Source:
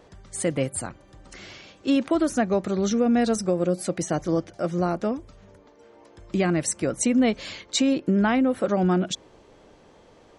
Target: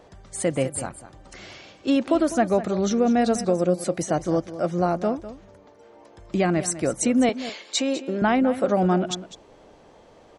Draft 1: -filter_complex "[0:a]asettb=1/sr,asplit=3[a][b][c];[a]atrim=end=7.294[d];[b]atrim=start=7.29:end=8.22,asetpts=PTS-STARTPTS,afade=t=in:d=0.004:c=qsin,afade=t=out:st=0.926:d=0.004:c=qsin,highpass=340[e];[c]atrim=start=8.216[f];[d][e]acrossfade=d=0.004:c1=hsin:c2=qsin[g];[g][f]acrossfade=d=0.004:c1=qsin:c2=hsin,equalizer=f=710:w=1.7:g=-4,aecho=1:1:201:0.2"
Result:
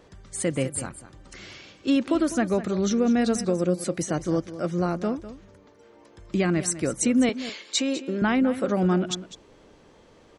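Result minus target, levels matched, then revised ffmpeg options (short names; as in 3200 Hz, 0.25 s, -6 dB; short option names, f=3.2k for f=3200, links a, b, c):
1000 Hz band -5.0 dB
-filter_complex "[0:a]asettb=1/sr,asplit=3[a][b][c];[a]atrim=end=7.294[d];[b]atrim=start=7.29:end=8.22,asetpts=PTS-STARTPTS,afade=t=in:d=0.004:c=qsin,afade=t=out:st=0.926:d=0.004:c=qsin,highpass=340[e];[c]atrim=start=8.216[f];[d][e]acrossfade=d=0.004:c1=hsin:c2=qsin[g];[g][f]acrossfade=d=0.004:c1=qsin:c2=hsin,equalizer=f=710:w=1.7:g=4.5,aecho=1:1:201:0.2"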